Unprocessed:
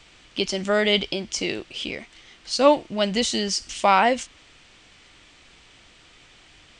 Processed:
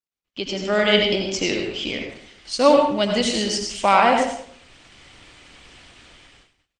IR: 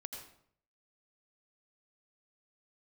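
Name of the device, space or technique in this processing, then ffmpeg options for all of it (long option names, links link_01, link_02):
speakerphone in a meeting room: -filter_complex "[1:a]atrim=start_sample=2205[link_01];[0:a][link_01]afir=irnorm=-1:irlink=0,asplit=2[link_02][link_03];[link_03]adelay=100,highpass=300,lowpass=3400,asoftclip=type=hard:threshold=-17dB,volume=-19dB[link_04];[link_02][link_04]amix=inputs=2:normalize=0,dynaudnorm=framelen=110:gausssize=13:maxgain=10dB,agate=range=-46dB:threshold=-49dB:ratio=16:detection=peak" -ar 48000 -c:a libopus -b:a 24k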